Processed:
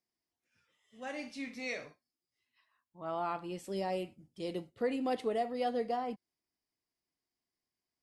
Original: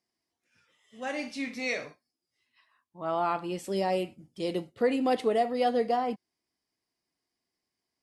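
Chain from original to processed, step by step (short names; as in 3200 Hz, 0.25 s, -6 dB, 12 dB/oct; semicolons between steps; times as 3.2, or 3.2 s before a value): low shelf 78 Hz +7.5 dB; gain -7.5 dB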